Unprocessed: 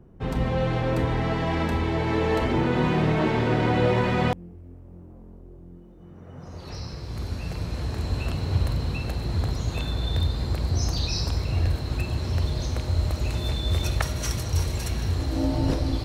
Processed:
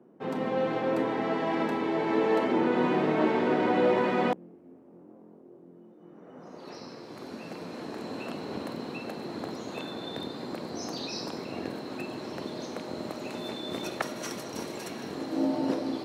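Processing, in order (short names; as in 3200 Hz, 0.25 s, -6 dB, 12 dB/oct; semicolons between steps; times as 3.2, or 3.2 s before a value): octaver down 2 oct, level 0 dB; HPF 230 Hz 24 dB/oct; high shelf 2300 Hz -9 dB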